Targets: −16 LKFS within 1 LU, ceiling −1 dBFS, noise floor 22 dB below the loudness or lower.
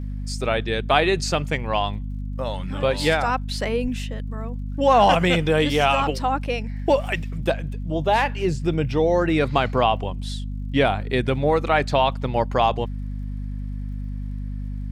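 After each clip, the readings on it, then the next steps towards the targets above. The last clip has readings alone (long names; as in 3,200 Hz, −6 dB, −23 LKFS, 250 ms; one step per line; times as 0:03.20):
crackle rate 50 per second; mains hum 50 Hz; hum harmonics up to 250 Hz; level of the hum −26 dBFS; integrated loudness −22.5 LKFS; sample peak −3.5 dBFS; target loudness −16.0 LKFS
→ click removal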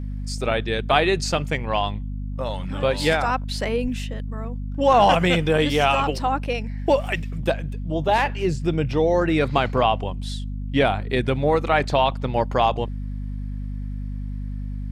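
crackle rate 0.13 per second; mains hum 50 Hz; hum harmonics up to 250 Hz; level of the hum −27 dBFS
→ hum removal 50 Hz, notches 5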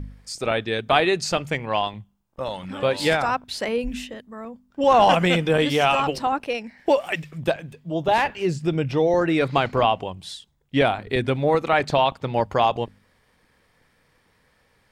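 mains hum none found; integrated loudness −22.0 LKFS; sample peak −3.0 dBFS; target loudness −16.0 LKFS
→ level +6 dB
brickwall limiter −1 dBFS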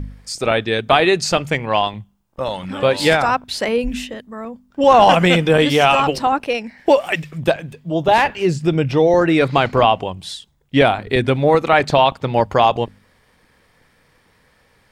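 integrated loudness −16.5 LKFS; sample peak −1.0 dBFS; background noise floor −58 dBFS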